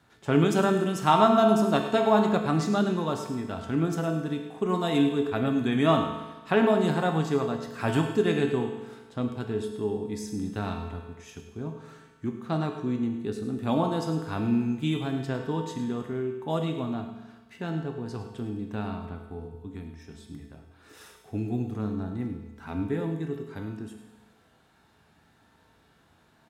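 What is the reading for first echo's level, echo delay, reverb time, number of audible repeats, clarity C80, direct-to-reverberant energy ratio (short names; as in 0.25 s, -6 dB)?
-12.0 dB, 0.104 s, 1.2 s, 1, 6.5 dB, 2.5 dB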